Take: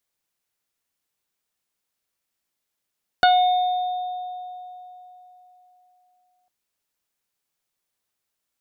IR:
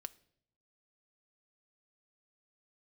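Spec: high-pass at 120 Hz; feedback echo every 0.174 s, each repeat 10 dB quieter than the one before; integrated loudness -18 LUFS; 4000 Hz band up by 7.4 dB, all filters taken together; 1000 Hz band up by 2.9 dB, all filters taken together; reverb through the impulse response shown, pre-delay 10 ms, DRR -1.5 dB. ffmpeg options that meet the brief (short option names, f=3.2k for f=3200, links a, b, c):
-filter_complex "[0:a]highpass=120,equalizer=f=1k:t=o:g=5,equalizer=f=4k:t=o:g=8,aecho=1:1:174|348|522|696:0.316|0.101|0.0324|0.0104,asplit=2[a][b];[1:a]atrim=start_sample=2205,adelay=10[c];[b][c]afir=irnorm=-1:irlink=0,volume=6dB[d];[a][d]amix=inputs=2:normalize=0,volume=-2.5dB"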